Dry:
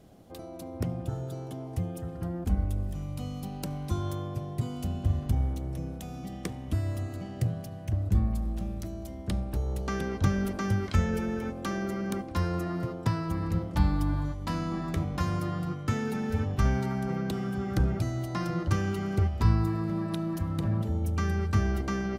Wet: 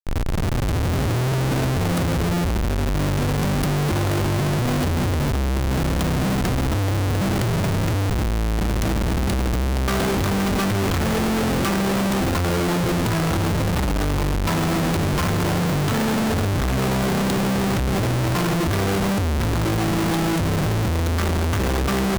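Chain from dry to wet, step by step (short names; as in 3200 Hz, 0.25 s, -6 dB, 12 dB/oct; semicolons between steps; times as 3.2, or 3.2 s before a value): tape start at the beginning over 1.28 s; Schmitt trigger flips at -40.5 dBFS; gain +9 dB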